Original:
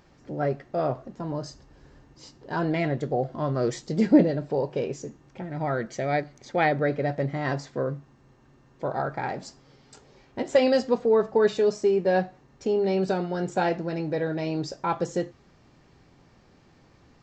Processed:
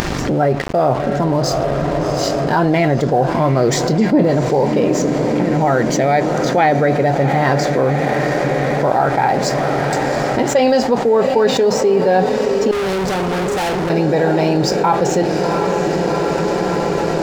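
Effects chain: echo that smears into a reverb 728 ms, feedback 74%, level -12.5 dB; dynamic bell 820 Hz, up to +6 dB, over -40 dBFS, Q 3.1; in parallel at +2 dB: upward compressor, threshold -25 dBFS; on the sum: crossover distortion -42.5 dBFS; 12.71–13.90 s: valve stage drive 32 dB, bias 0.6; level flattener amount 70%; trim -5.5 dB

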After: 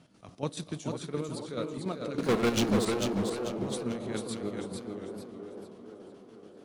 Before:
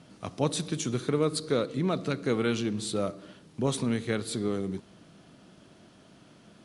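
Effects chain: 2.18–2.85 s: waveshaping leveller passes 5; square tremolo 7 Hz, depth 60%, duty 45%; on a send: feedback echo behind a band-pass 494 ms, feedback 64%, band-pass 530 Hz, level -6 dB; on the sum: modulated delay 445 ms, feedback 38%, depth 97 cents, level -4.5 dB; trim -5.5 dB

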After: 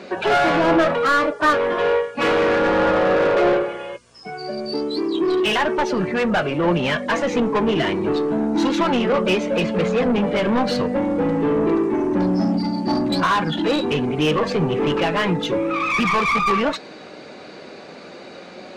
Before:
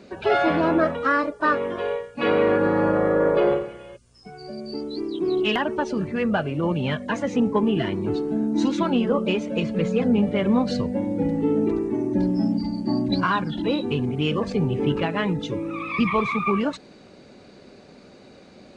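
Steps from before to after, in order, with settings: overdrive pedal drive 23 dB, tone 2.8 kHz, clips at -8.5 dBFS; flange 0.32 Hz, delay 5.4 ms, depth 1.2 ms, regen +76%; trim +2.5 dB

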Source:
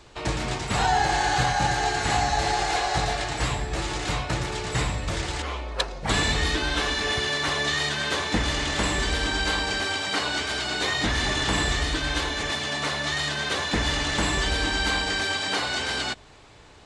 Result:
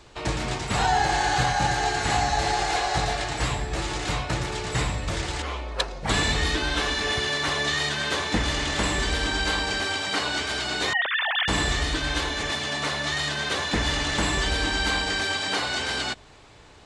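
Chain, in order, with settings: 10.93–11.48 s: formants replaced by sine waves

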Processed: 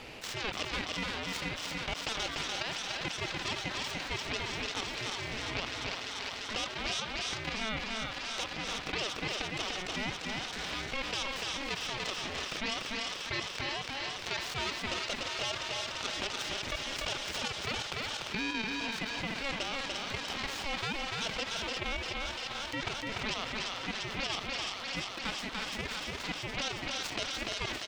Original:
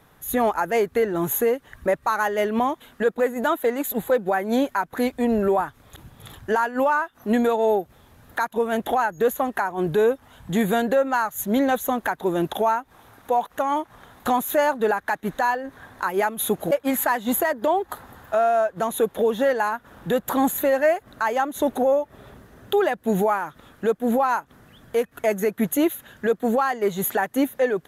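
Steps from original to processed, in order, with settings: self-modulated delay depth 0.9 ms; treble shelf 4.5 kHz +8.5 dB; level held to a coarse grid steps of 10 dB; high-pass 1.3 kHz 12 dB/octave; feedback echo behind a high-pass 346 ms, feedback 76%, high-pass 2.3 kHz, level -8 dB; ring modulator 1.1 kHz; distance through air 160 m; on a send: delay 293 ms -7 dB; on the sum: level flattener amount 70%; trim -7 dB

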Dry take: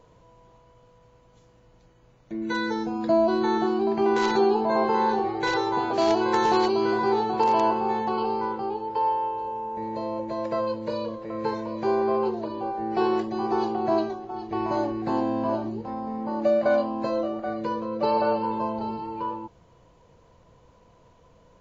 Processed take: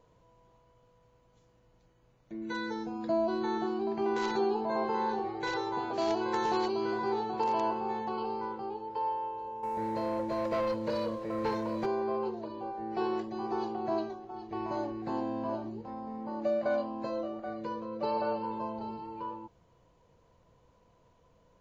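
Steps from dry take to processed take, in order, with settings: 9.63–11.86 s: waveshaping leveller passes 2; trim -8.5 dB

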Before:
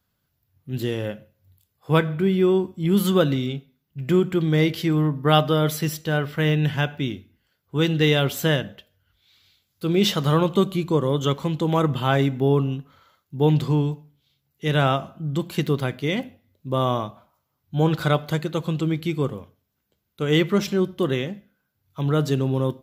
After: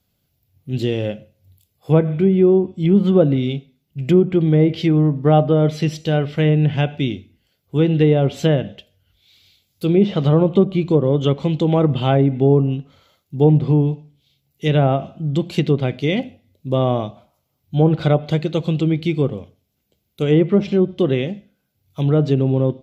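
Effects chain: high-order bell 1.3 kHz -9 dB 1.2 oct; low-pass that closes with the level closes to 1.1 kHz, closed at -15 dBFS; trim +5.5 dB

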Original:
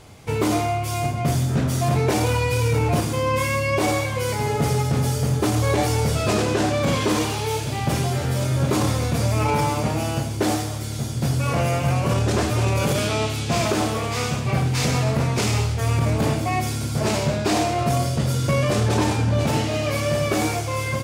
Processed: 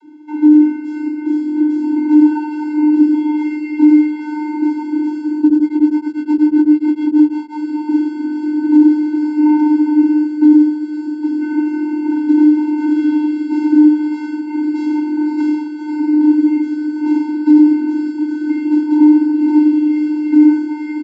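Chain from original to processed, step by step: high-pass 210 Hz 24 dB/octave; tilt EQ -4 dB/octave; compressor with a negative ratio -15 dBFS; vocoder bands 32, square 302 Hz; doubling 47 ms -9 dB; feedback echo behind a high-pass 502 ms, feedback 69%, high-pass 2.2 kHz, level -7.5 dB; loudness maximiser +9 dB; 5.41–7.52 s: tremolo of two beating tones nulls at 11 Hz -> 5.1 Hz; trim -1 dB

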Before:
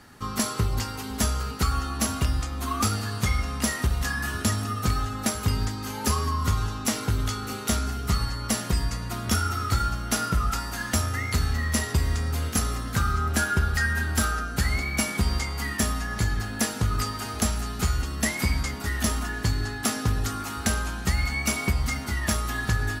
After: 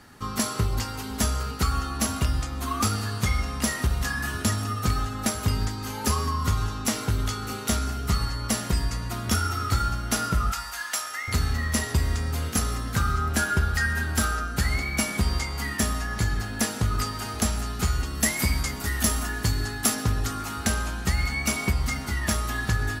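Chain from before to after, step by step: 10.52–11.28 s: high-pass 960 Hz 12 dB/octave; 18.15–19.95 s: treble shelf 7.7 kHz +8.5 dB; reverberation RT60 0.45 s, pre-delay 117 ms, DRR 18 dB

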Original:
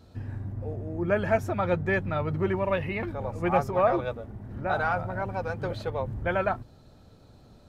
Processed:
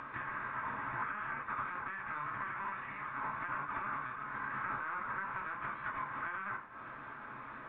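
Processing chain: spectral contrast reduction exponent 0.34; steep high-pass 1 kHz 36 dB/octave; LPC vocoder at 8 kHz pitch kept; added noise white -64 dBFS; reverberation, pre-delay 3 ms, DRR 0 dB; flange 1.7 Hz, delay 6 ms, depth 4.7 ms, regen -72%; peak limiter -24 dBFS, peak gain reduction 10.5 dB; compression 16:1, threshold -48 dBFS, peak gain reduction 18.5 dB; low-pass 1.4 kHz 24 dB/octave; upward compressor, threshold -59 dBFS; trim +18 dB

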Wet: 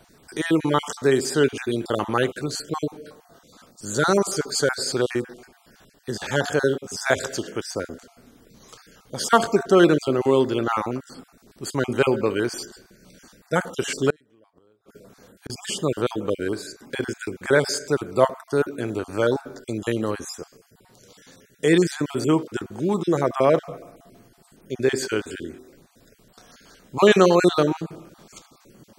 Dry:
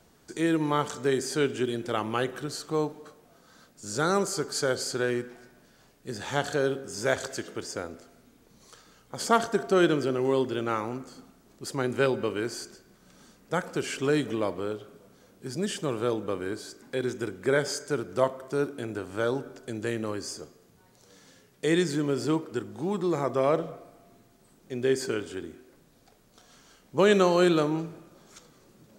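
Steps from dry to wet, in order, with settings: random holes in the spectrogram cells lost 29%; 14.10–15.50 s: inverted gate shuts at -29 dBFS, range -35 dB; trim +7 dB

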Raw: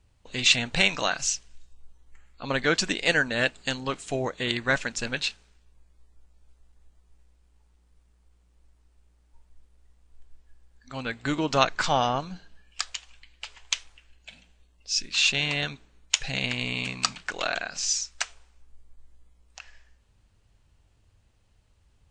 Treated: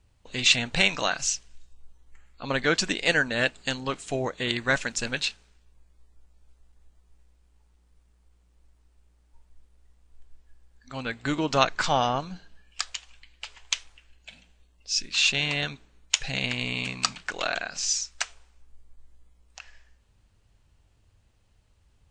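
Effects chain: 4.58–5.25 s: treble shelf 8.1 kHz +7.5 dB

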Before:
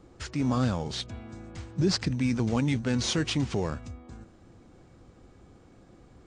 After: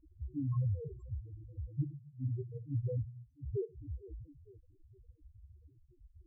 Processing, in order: self-modulated delay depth 0.19 ms; static phaser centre 800 Hz, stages 6; tape echo 456 ms, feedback 49%, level -14.5 dB, low-pass 1.1 kHz; in parallel at -8.5 dB: wavefolder -28.5 dBFS; on the sum: inverted gate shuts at -22 dBFS, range -33 dB; on a send at -12 dB: peaking EQ 6 kHz +9.5 dB 1 oct + reverberation RT60 0.50 s, pre-delay 6 ms; on the sum: loudest bins only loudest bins 2; tilt EQ -3 dB/octave; comb of notches 690 Hz; Shepard-style phaser falling 0.72 Hz; trim -7 dB

